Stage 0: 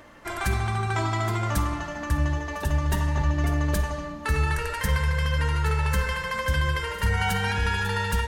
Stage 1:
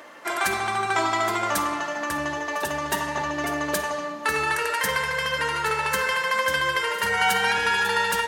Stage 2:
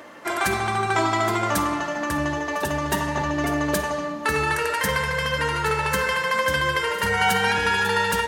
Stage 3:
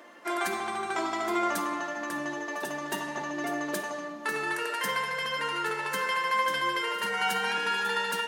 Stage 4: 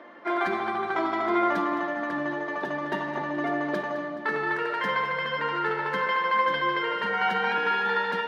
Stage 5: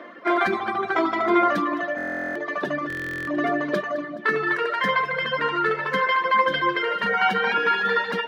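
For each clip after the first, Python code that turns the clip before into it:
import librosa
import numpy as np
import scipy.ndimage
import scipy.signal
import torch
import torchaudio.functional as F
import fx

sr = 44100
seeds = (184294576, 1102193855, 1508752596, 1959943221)

y1 = scipy.signal.sosfilt(scipy.signal.butter(2, 380.0, 'highpass', fs=sr, output='sos'), x)
y1 = y1 * 10.0 ** (6.0 / 20.0)
y2 = fx.low_shelf(y1, sr, hz=300.0, db=11.5)
y3 = scipy.signal.sosfilt(scipy.signal.butter(4, 190.0, 'highpass', fs=sr, output='sos'), y2)
y3 = fx.comb_fb(y3, sr, f0_hz=350.0, decay_s=0.2, harmonics='all', damping=0.0, mix_pct=70)
y4 = fx.air_absorb(y3, sr, metres=330.0)
y4 = fx.notch(y4, sr, hz=2700.0, q=10.0)
y4 = fx.echo_feedback(y4, sr, ms=212, feedback_pct=54, wet_db=-13.5)
y4 = y4 * 10.0 ** (5.5 / 20.0)
y5 = fx.notch(y4, sr, hz=870.0, q=5.6)
y5 = fx.dereverb_blind(y5, sr, rt60_s=1.1)
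y5 = fx.buffer_glitch(y5, sr, at_s=(1.96, 2.88), block=1024, repeats=16)
y5 = y5 * 10.0 ** (7.0 / 20.0)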